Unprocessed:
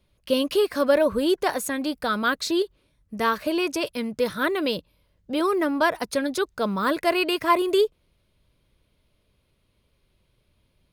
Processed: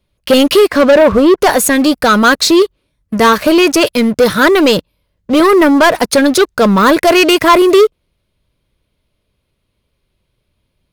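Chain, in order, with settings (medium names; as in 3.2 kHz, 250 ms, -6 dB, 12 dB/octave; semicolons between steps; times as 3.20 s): 0.66–1.36 s: low-pass 3.3 kHz -> 1.4 kHz 6 dB/octave; waveshaping leveller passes 3; trim +7 dB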